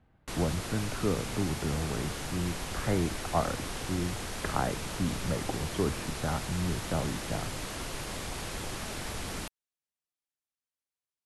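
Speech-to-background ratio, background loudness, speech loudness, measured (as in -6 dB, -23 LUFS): 3.0 dB, -37.0 LUFS, -34.0 LUFS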